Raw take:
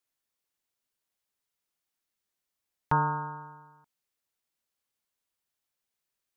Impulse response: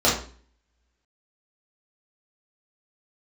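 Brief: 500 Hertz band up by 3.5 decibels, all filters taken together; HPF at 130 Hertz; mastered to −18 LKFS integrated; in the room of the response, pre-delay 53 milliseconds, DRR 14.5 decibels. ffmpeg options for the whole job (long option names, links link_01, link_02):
-filter_complex "[0:a]highpass=130,equalizer=frequency=500:width_type=o:gain=4,asplit=2[link_01][link_02];[1:a]atrim=start_sample=2205,adelay=53[link_03];[link_02][link_03]afir=irnorm=-1:irlink=0,volume=-33dB[link_04];[link_01][link_04]amix=inputs=2:normalize=0,volume=11dB"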